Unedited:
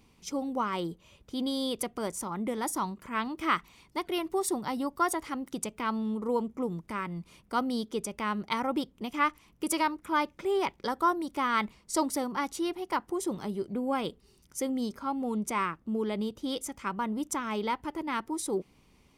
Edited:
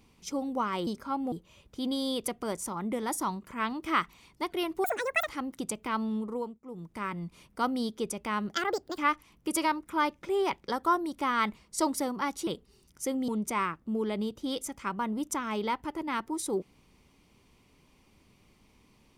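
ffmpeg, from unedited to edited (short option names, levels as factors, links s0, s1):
-filter_complex "[0:a]asplit=11[s0][s1][s2][s3][s4][s5][s6][s7][s8][s9][s10];[s0]atrim=end=0.872[s11];[s1]atrim=start=14.828:end=15.282[s12];[s2]atrim=start=0.868:end=4.394[s13];[s3]atrim=start=4.39:end=5.21,asetpts=PTS-STARTPTS,asetrate=83790,aresample=44100[s14];[s4]atrim=start=5.206:end=6.54,asetpts=PTS-STARTPTS,afade=t=out:st=0.894:d=0.44:silence=0.112202[s15];[s5]atrim=start=6.54:end=6.56,asetpts=PTS-STARTPTS,volume=0.112[s16];[s6]atrim=start=6.56:end=8.484,asetpts=PTS-STARTPTS,afade=t=in:d=0.44:silence=0.112202[s17];[s7]atrim=start=8.48:end=9.14,asetpts=PTS-STARTPTS,asetrate=66150,aresample=44100[s18];[s8]atrim=start=9.136:end=12.632[s19];[s9]atrim=start=14.018:end=14.832[s20];[s10]atrim=start=15.278[s21];[s11][s12]acrossfade=d=0.004:c1=hsin:c2=hsin[s22];[s22][s13]acrossfade=d=0.004:c1=hsin:c2=hsin[s23];[s23][s14]acrossfade=d=0.004:c1=hsin:c2=hsin[s24];[s15][s16][s17]concat=n=3:v=0:a=1[s25];[s24][s25]acrossfade=d=0.004:c1=hsin:c2=hsin[s26];[s26][s18]acrossfade=d=0.004:c1=hsin:c2=hsin[s27];[s27][s19]acrossfade=d=0.004:c1=hsin:c2=hsin[s28];[s28][s20]acrossfade=d=0.004:c1=hsin:c2=hsin[s29];[s29][s21]acrossfade=d=0.004:c1=hsin:c2=hsin"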